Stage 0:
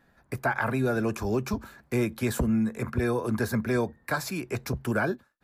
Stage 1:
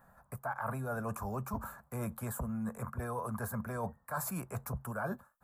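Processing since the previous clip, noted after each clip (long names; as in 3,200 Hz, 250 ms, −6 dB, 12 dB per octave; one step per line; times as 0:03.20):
drawn EQ curve 190 Hz 0 dB, 340 Hz −14 dB, 560 Hz +2 dB, 1,200 Hz +7 dB, 2,100 Hz −11 dB, 3,800 Hz −14 dB, 5,400 Hz −11 dB, 7,900 Hz +3 dB, 15,000 Hz +8 dB
reversed playback
downward compressor 6 to 1, threshold −36 dBFS, peak gain reduction 16 dB
reversed playback
level +1 dB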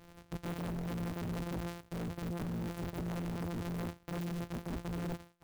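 samples sorted by size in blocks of 256 samples
wave folding −38.5 dBFS
converter with an unsteady clock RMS 0.023 ms
level +6 dB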